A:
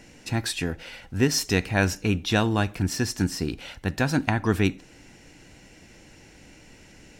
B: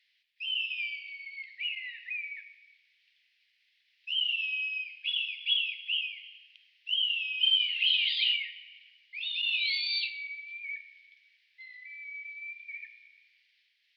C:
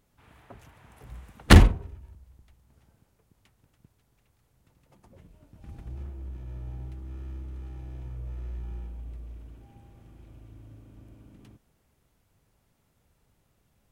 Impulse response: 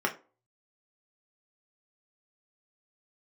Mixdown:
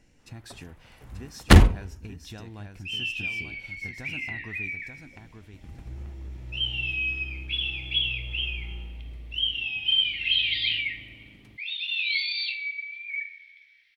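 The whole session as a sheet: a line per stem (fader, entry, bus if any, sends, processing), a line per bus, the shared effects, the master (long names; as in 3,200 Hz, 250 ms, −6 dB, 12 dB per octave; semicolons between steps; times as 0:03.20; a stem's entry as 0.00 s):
−15.5 dB, 0.00 s, no send, echo send −6 dB, low-shelf EQ 98 Hz +12 dB; downward compressor 5 to 1, threshold −23 dBFS, peak gain reduction 9.5 dB
0.0 dB, 2.45 s, send −5 dB, no echo send, notch filter 2,900 Hz, Q 7.5
0.0 dB, 0.00 s, no send, no echo send, downward expander −50 dBFS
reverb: on, RT60 0.35 s, pre-delay 3 ms
echo: repeating echo 886 ms, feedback 24%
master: no processing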